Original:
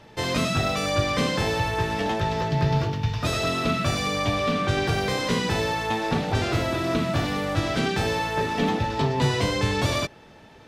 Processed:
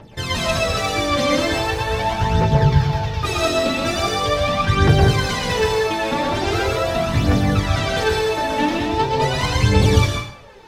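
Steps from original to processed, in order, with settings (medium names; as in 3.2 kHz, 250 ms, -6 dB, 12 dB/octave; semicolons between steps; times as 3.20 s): phaser 0.41 Hz, delay 3.7 ms, feedback 77%; plate-style reverb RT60 0.61 s, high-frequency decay 0.8×, pre-delay 105 ms, DRR -0.5 dB; trim -1.5 dB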